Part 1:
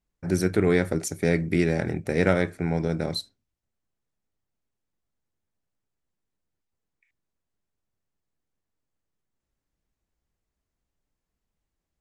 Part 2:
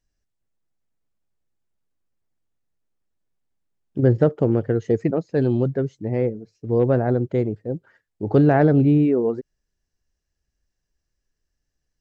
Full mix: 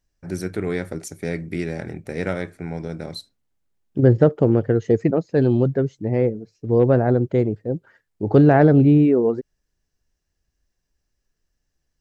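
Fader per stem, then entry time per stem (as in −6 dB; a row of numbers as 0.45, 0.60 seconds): −4.0, +2.5 decibels; 0.00, 0.00 seconds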